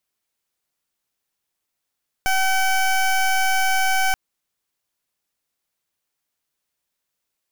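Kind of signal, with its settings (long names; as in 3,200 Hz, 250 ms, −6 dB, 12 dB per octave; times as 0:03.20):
pulse wave 762 Hz, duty 19% −18.5 dBFS 1.88 s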